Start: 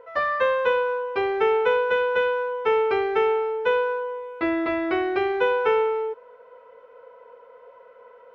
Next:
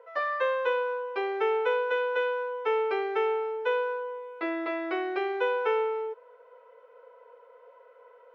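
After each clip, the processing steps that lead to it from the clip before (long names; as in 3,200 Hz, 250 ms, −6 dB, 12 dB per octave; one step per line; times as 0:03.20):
high-pass filter 330 Hz 24 dB per octave
level −5.5 dB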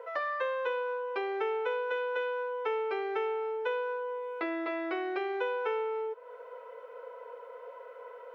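downward compressor 2.5 to 1, threshold −44 dBFS, peak gain reduction 14 dB
level +7.5 dB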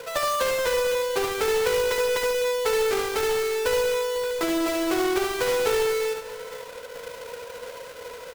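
each half-wave held at its own peak
multi-tap delay 73/499 ms −5.5/−15 dB
level +3 dB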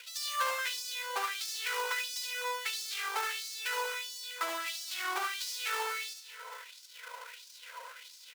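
auto-filter high-pass sine 1.5 Hz 920–5,100 Hz
level −7.5 dB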